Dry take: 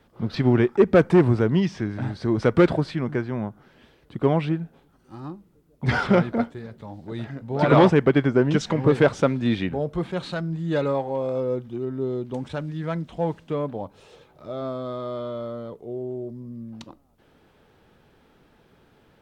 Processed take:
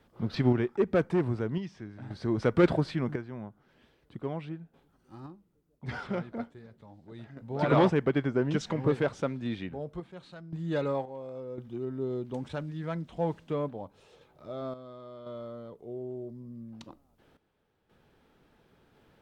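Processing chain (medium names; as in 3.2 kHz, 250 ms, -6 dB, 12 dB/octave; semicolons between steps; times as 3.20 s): random-step tremolo 1.9 Hz, depth 80%; trim -4 dB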